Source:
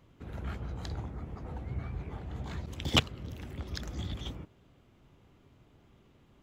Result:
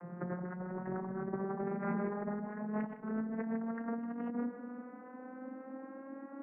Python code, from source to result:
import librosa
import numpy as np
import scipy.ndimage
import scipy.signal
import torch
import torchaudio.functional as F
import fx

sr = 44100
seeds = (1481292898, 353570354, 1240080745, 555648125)

y = fx.vocoder_glide(x, sr, note=53, semitones=8)
y = scipy.signal.sosfilt(scipy.signal.ellip(4, 1.0, 50, 1800.0, 'lowpass', fs=sr, output='sos'), y)
y = fx.tilt_eq(y, sr, slope=2.0)
y = fx.hum_notches(y, sr, base_hz=50, count=8)
y = fx.over_compress(y, sr, threshold_db=-54.0, ratio=-1.0)
y = fx.doubler(y, sr, ms=13.0, db=-12.0)
y = y + 10.0 ** (-13.5 / 20.0) * np.pad(y, (int(156 * sr / 1000.0), 0))[:len(y)]
y = F.gain(torch.from_numpy(y), 14.0).numpy()